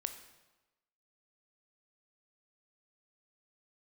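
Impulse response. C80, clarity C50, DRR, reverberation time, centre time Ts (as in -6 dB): 12.0 dB, 10.0 dB, 7.5 dB, 1.1 s, 14 ms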